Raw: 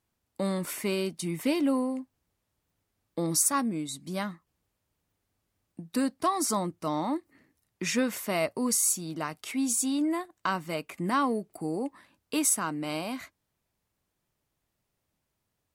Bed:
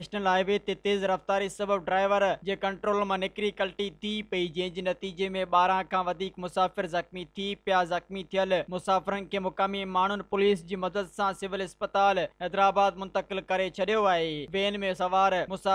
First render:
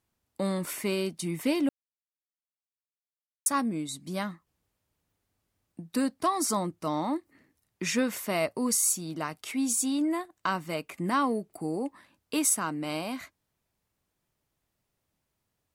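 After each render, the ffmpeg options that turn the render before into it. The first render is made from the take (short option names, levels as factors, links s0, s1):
-filter_complex "[0:a]asplit=3[s0][s1][s2];[s0]atrim=end=1.69,asetpts=PTS-STARTPTS,afade=t=out:st=1.686:d=0.004:c=hsin[s3];[s1]atrim=start=1.69:end=3.46,asetpts=PTS-STARTPTS,volume=0[s4];[s2]atrim=start=3.46,asetpts=PTS-STARTPTS,afade=t=in:d=0.004:c=hsin[s5];[s3][s4][s5]concat=n=3:v=0:a=1"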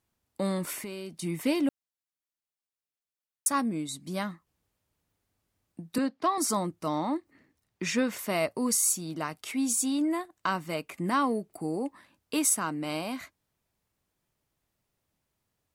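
-filter_complex "[0:a]asplit=3[s0][s1][s2];[s0]afade=t=out:st=0.78:d=0.02[s3];[s1]acompressor=threshold=0.0178:ratio=6:attack=3.2:release=140:knee=1:detection=peak,afade=t=in:st=0.78:d=0.02,afade=t=out:st=1.21:d=0.02[s4];[s2]afade=t=in:st=1.21:d=0.02[s5];[s3][s4][s5]amix=inputs=3:normalize=0,asettb=1/sr,asplit=3[s6][s7][s8];[s6]atrim=end=5.984[s9];[s7]atrim=start=5.98:end=6.38,asetpts=PTS-STARTPTS,afade=t=in:d=0.004:c=qsin,afade=t=out:st=0.396:d=0.004:c=qsin,acrossover=split=170 5400:gain=0.178 1 0.0891[s10][s11][s12];[s10][s11][s12]amix=inputs=3:normalize=0[s13];[s8]atrim=start=6.376[s14];[s9][s13]acrossfade=d=0.004:c1=hsin:c2=qsin[s15];[s15][s14]acrossfade=d=0.004:c1=qsin:c2=hsin,asettb=1/sr,asplit=3[s16][s17][s18];[s16]atrim=end=6.984[s19];[s17]atrim=start=6.98:end=8.19,asetpts=PTS-STARTPTS,afade=t=in:d=0.004:c=qsin,afade=t=out:st=1.206:d=0.004:c=qsin,equalizer=f=12000:w=0.79:g=-7.5[s20];[s18]atrim=start=8.186[s21];[s19][s20]acrossfade=d=0.004:c1=hsin:c2=qsin[s22];[s22][s21]acrossfade=d=0.004:c1=qsin:c2=hsin"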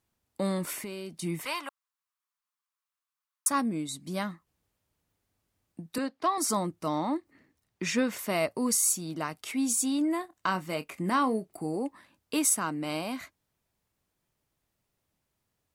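-filter_complex "[0:a]asettb=1/sr,asplit=3[s0][s1][s2];[s0]atrim=end=1.454[s3];[s1]atrim=start=1.45:end=3.5,asetpts=PTS-STARTPTS,afade=t=in:d=0.004:c=qsin,afade=t=out:st=2.046:d=0.004:c=qsin,highpass=f=1100:t=q:w=4.1[s4];[s2]atrim=start=3.496[s5];[s3][s4]acrossfade=d=0.004:c1=hsin:c2=qsin[s6];[s6][s5]acrossfade=d=0.004:c1=qsin:c2=hsin,asettb=1/sr,asplit=3[s7][s8][s9];[s7]atrim=end=5.864[s10];[s8]atrim=start=5.86:end=6.48,asetpts=PTS-STARTPTS,afade=t=in:d=0.004:c=qsin,afade=t=out:st=0.616:d=0.004:c=qsin,equalizer=f=190:t=o:w=1.3:g=-7[s11];[s9]atrim=start=6.476[s12];[s10][s11]acrossfade=d=0.004:c1=hsin:c2=qsin[s13];[s13][s12]acrossfade=d=0.004:c1=qsin:c2=hsin,asettb=1/sr,asplit=3[s14][s15][s16];[s14]atrim=end=10.194[s17];[s15]atrim=start=10.19:end=11.77,asetpts=PTS-STARTPTS,afade=t=in:d=0.004:c=qsin,afade=t=out:st=1.576:d=0.004:c=qsin,asplit=2[s18][s19];[s19]adelay=27,volume=0.224[s20];[s18][s20]amix=inputs=2:normalize=0,atrim=end_sample=69678[s21];[s16]atrim=start=11.766[s22];[s17][s21]acrossfade=d=0.004:c1=hsin:c2=qsin[s23];[s23][s22]acrossfade=d=0.004:c1=qsin:c2=hsin"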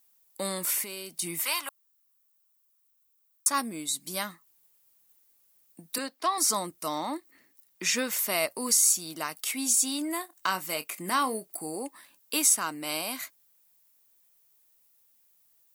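-filter_complex "[0:a]acrossover=split=6300[s0][s1];[s1]acompressor=threshold=0.00794:ratio=4:attack=1:release=60[s2];[s0][s2]amix=inputs=2:normalize=0,aemphasis=mode=production:type=riaa"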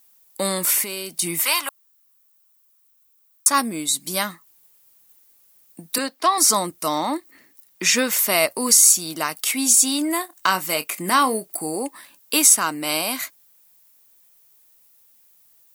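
-af "volume=2.82,alimiter=limit=0.891:level=0:latency=1"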